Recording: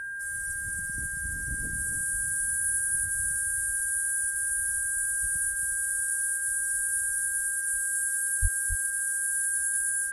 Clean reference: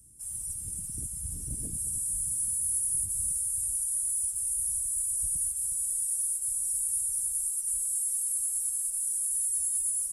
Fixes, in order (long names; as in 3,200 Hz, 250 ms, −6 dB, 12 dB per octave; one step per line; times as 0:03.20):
notch filter 1,600 Hz, Q 30
0:08.41–0:08.53: high-pass filter 140 Hz 24 dB per octave
echo removal 274 ms −7.5 dB